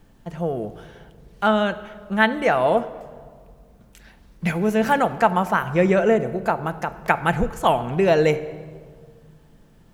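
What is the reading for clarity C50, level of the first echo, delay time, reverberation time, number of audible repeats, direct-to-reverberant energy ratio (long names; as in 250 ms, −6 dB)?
14.5 dB, no echo audible, no echo audible, 1.8 s, no echo audible, 10.0 dB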